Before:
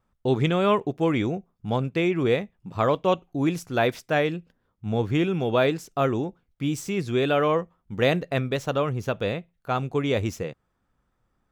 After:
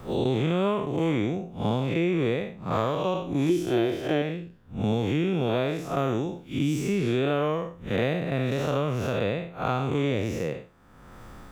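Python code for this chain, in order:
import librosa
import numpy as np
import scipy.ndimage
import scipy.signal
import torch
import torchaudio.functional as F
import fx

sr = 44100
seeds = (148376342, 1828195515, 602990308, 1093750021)

y = fx.spec_blur(x, sr, span_ms=167.0)
y = fx.small_body(y, sr, hz=(350.0, 3100.0), ring_ms=45, db=17, at=(3.49, 4.22))
y = fx.band_squash(y, sr, depth_pct=100)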